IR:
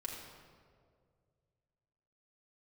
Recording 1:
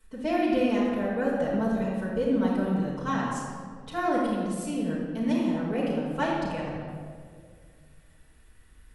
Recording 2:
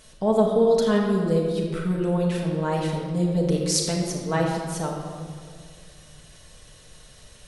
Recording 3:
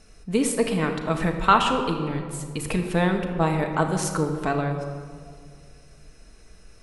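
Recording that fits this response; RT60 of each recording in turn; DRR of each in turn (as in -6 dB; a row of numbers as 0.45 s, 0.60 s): 2; 2.1 s, 2.1 s, 2.1 s; -9.0 dB, -2.5 dB, 3.5 dB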